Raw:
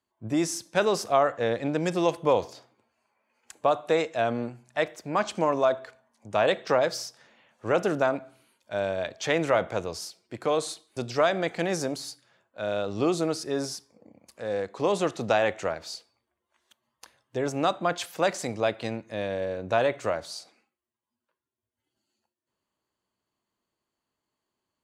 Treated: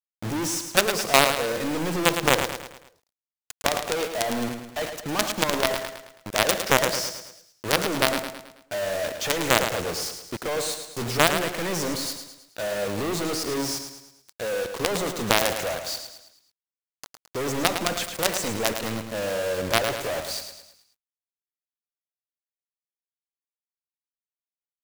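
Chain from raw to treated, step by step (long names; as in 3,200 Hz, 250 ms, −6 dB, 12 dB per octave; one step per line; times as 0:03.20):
log-companded quantiser 2 bits
on a send: repeating echo 108 ms, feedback 46%, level −8 dB
on the sum: level −1.5 dB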